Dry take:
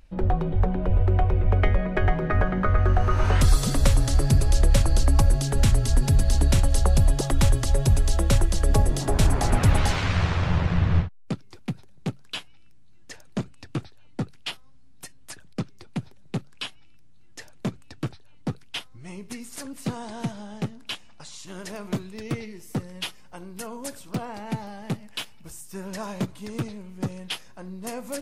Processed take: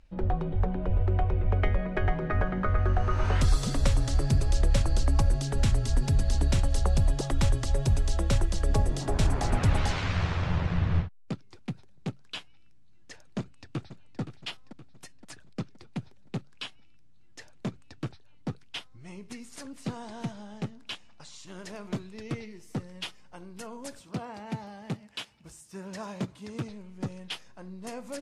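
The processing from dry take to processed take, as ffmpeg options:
-filter_complex "[0:a]asplit=2[a][b];[b]afade=t=in:st=13.38:d=0.01,afade=t=out:st=14.2:d=0.01,aecho=0:1:520|1040|1560|2080|2600:0.266073|0.133036|0.0665181|0.0332591|0.0166295[c];[a][c]amix=inputs=2:normalize=0,asettb=1/sr,asplit=3[d][e][f];[d]atrim=end=23.994[g];[e]atrim=start=23.99:end=26.69,asetpts=PTS-STARTPTS,afade=t=in:d=0.004:c=qsin,afade=t=out:st=2.696:d=0.004:c=qsin,highpass=45[h];[f]atrim=start=26.686[i];[g][h]acrossfade=d=0.004:c1=hsin:c2=qsin[j];[j][i]acrossfade=d=0.004:c1=qsin:c2=hsin,lowpass=8.1k,volume=-5dB"

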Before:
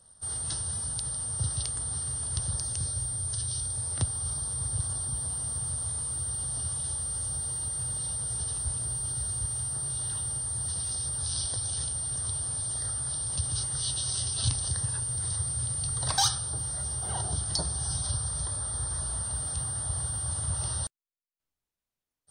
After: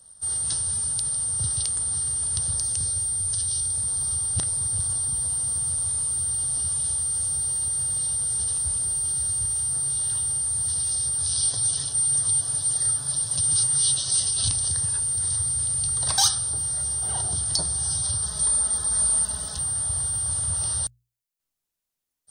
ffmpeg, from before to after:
-filter_complex "[0:a]asettb=1/sr,asplit=3[a][b][c];[a]atrim=end=11.424[d];[b]atrim=start=11.42:end=14.31,asetpts=PTS-STARTPTS,afade=t=in:d=0.004:c=qsin,afade=t=out:st=2.886:d=0.004:c=qsin,aecho=1:1:6.9:0.67,atrim=end_sample=127449[e];[c]atrim=start=14.306[f];[d][e]acrossfade=d=0.004:c1=hsin:c2=qsin[g];[g][f]acrossfade=d=0.004:c1=qsin:c2=hsin,asettb=1/sr,asplit=3[h][i][j];[h]atrim=end=18.224[k];[i]atrim=start=18.22:end=19.59,asetpts=PTS-STARTPTS,afade=t=in:d=0.004:c=qsin,afade=t=out:st=1.366:d=0.004:c=qsin,aecho=1:1:4.7:0.99,atrim=end_sample=60417[l];[j]atrim=start=19.586[m];[k][l]acrossfade=d=0.004:c1=hsin:c2=qsin[n];[n][m]acrossfade=d=0.004:c1=qsin:c2=hsin,asplit=3[o][p][q];[o]atrim=end=3.842[r];[p]atrim=start=3.838:end=4.572,asetpts=PTS-STARTPTS,areverse[s];[q]atrim=start=4.568[t];[r][s]acrossfade=d=0.004:c1=hsin:c2=hsin[u];[u][t]acrossfade=d=0.004:c1=hsin:c2=hsin,highshelf=f=4.3k:g=9,bandreject=f=60:t=h:w=6,bandreject=f=120:t=h:w=6"

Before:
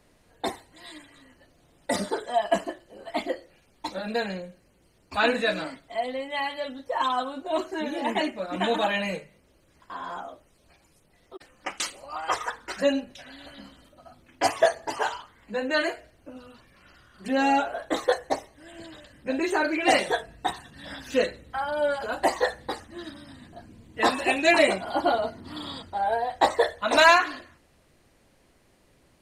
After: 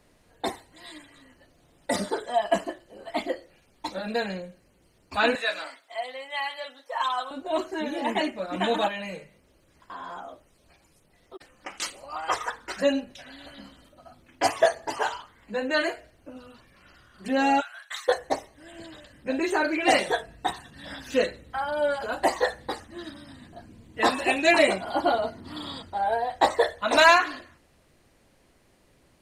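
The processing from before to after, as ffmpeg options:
-filter_complex "[0:a]asettb=1/sr,asplit=3[a][b][c];[a]atrim=end=5.354[d];[b]atrim=start=5.35:end=7.31,asetpts=PTS-STARTPTS,afade=t=in:d=0.004:c=qsin,afade=t=out:st=1.956:d=0.004:c=qsin,highpass=760[e];[c]atrim=start=7.306[f];[d][e]acrossfade=d=0.004:c1=hsin:c2=qsin[g];[g][f]acrossfade=d=0.004:c1=qsin:c2=hsin,asettb=1/sr,asplit=3[h][i][j];[h]atrim=end=8.884[k];[i]atrim=start=8.88:end=11.82,asetpts=PTS-STARTPTS,afade=t=in:d=0.004:c=qsin,afade=t=out:st=2.936:d=0.004:c=qsin,acompressor=threshold=-36dB:ratio=2:attack=3.2:release=140:knee=1:detection=peak[l];[j]atrim=start=11.816[m];[k][l]acrossfade=d=0.004:c1=hsin:c2=qsin[n];[n][m]acrossfade=d=0.004:c1=qsin:c2=hsin,asplit=3[o][p][q];[o]afade=t=out:st=17.6:d=0.02[r];[p]highpass=f=1.4k:w=0.5412,highpass=f=1.4k:w=1.3066,afade=t=in:st=17.6:d=0.02,afade=t=out:st=18.07:d=0.02[s];[q]afade=t=in:st=18.07:d=0.02[t];[r][s][t]amix=inputs=3:normalize=0"

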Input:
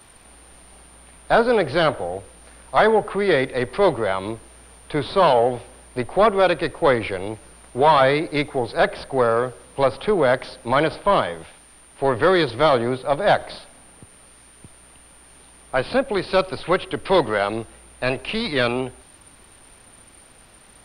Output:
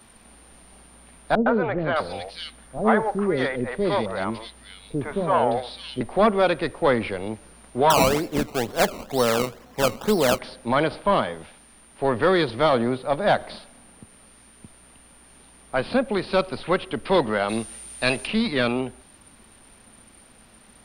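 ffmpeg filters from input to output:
-filter_complex "[0:a]asettb=1/sr,asplit=3[a][b][c];[a]atrim=end=1.354[d];[b]atrim=start=1.35:end=6.01,asetpts=PTS-STARTPTS,afade=t=in:d=0.004:c=qsin,afade=t=out:st=4.656:d=0.004:c=qsin,acrossover=split=510|2600[e][f][g];[f]adelay=110[h];[g]adelay=610[i];[e][h][i]amix=inputs=3:normalize=0,atrim=end_sample=205506[j];[c]atrim=start=6.006[k];[d][j]acrossfade=d=0.004:c1=hsin:c2=qsin[l];[l][k]acrossfade=d=0.004:c1=qsin:c2=hsin,asettb=1/sr,asplit=3[m][n][o];[m]atrim=end=7.904[p];[n]atrim=start=7.9:end=10.39,asetpts=PTS-STARTPTS,afade=t=in:d=0.004:c=qsin,afade=t=out:st=2.486:d=0.004:c=qsin,acrusher=samples=18:mix=1:aa=0.000001:lfo=1:lforange=18:lforate=2.1[q];[o]atrim=start=10.386[r];[p][q]acrossfade=d=0.004:c1=hsin:c2=qsin[s];[s][r]acrossfade=d=0.004:c1=qsin:c2=hsin,asplit=3[t][u][v];[t]afade=t=out:st=17.48:d=0.02[w];[u]equalizer=f=7.6k:w=0.36:g=14,afade=t=in:st=17.48:d=0.02,afade=t=out:st=18.26:d=0.02[x];[v]afade=t=in:st=18.26:d=0.02[y];[w][x][y]amix=inputs=3:normalize=0,equalizer=f=220:w=3.7:g=9,volume=-3dB"

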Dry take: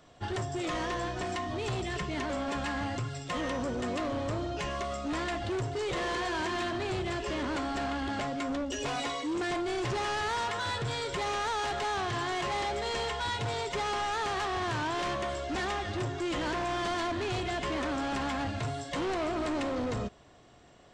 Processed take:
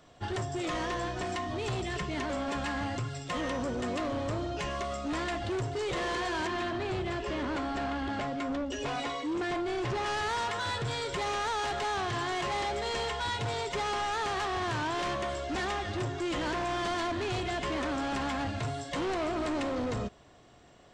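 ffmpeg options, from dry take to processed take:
-filter_complex "[0:a]asettb=1/sr,asplit=3[a][b][c];[a]atrim=end=6.474[d];[b]atrim=start=6.47:end=10.06,asetpts=PTS-STARTPTS,afade=t=in:d=0.004:c=qsin,afade=t=out:st=3.586:d=0.004:c=qsin,lowpass=f=3.8k:p=1[e];[c]atrim=start=10.056[f];[d][e]acrossfade=d=0.004:c1=hsin:c2=qsin[g];[g][f]acrossfade=d=0.004:c1=qsin:c2=hsin"

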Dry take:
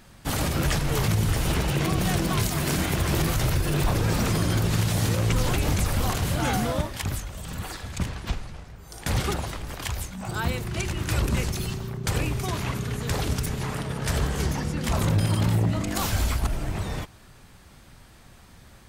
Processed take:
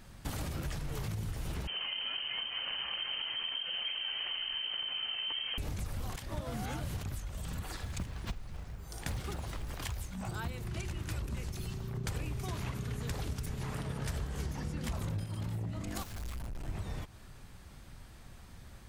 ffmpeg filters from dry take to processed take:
-filter_complex "[0:a]asettb=1/sr,asplit=3[a][b][c];[a]atrim=end=1.674[d];[b]atrim=start=1.67:end=5.58,asetpts=PTS-STARTPTS,afade=t=in:d=0.004:c=qsin,afade=t=out:st=3.906:d=0.004:c=qsin,lowpass=f=2.7k:t=q:w=0.5098,lowpass=f=2.7k:t=q:w=0.6013,lowpass=f=2.7k:t=q:w=0.9,lowpass=f=2.7k:t=q:w=2.563,afreqshift=-3200[e];[c]atrim=start=5.576[f];[d][e]acrossfade=d=0.004:c1=hsin:c2=qsin[g];[g][f]acrossfade=d=0.004:c1=qsin:c2=hsin,asettb=1/sr,asplit=3[h][i][j];[h]atrim=end=7.804[k];[i]atrim=start=7.8:end=10.11,asetpts=PTS-STARTPTS,afade=t=in:d=0.004:c=qsin,afade=t=out:st=2.306:d=0.004:c=qsin,acrusher=bits=6:mode=log:mix=0:aa=0.000001[l];[j]atrim=start=10.106[m];[k][l]acrossfade=d=0.004:c1=hsin:c2=qsin[n];[n][m]acrossfade=d=0.004:c1=qsin:c2=hsin,asplit=3[o][p][q];[o]afade=t=out:st=16.02:d=0.02[r];[p]aeval=exprs='(tanh(70.8*val(0)+0.35)-tanh(0.35))/70.8':c=same,afade=t=in:st=16.02:d=0.02,afade=t=out:st=16.68:d=0.02[s];[q]afade=t=in:st=16.68:d=0.02[t];[r][s][t]amix=inputs=3:normalize=0,asplit=5[u][v][w][x][y];[u]atrim=end=6.162[z];[v]atrim=start=6.158:end=7.032,asetpts=PTS-STARTPTS,areverse[aa];[w]atrim=start=7.028:end=11.952[ab];[x]atrim=start=11.948:end=15.242,asetpts=PTS-STARTPTS,volume=6dB[ac];[y]atrim=start=15.238[ad];[z][aa]acrossfade=d=0.004:c1=hsin:c2=hsin[ae];[ae][ab]acrossfade=d=0.004:c1=hsin:c2=hsin[af];[af][ac]acrossfade=d=0.004:c1=hsin:c2=hsin[ag];[ag][ad]acrossfade=d=0.004:c1=hsin:c2=hsin,lowshelf=f=110:g=7,acompressor=threshold=-30dB:ratio=6,volume=-5dB"

